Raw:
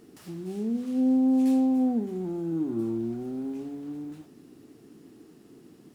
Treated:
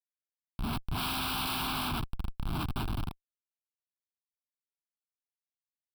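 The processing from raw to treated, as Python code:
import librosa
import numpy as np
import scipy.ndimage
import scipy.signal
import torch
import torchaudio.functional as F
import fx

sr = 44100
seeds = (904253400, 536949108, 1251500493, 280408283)

y = fx.spec_flatten(x, sr, power=0.17)
y = fx.schmitt(y, sr, flips_db=-21.5)
y = fx.fixed_phaser(y, sr, hz=1900.0, stages=6)
y = y * librosa.db_to_amplitude(-1.0)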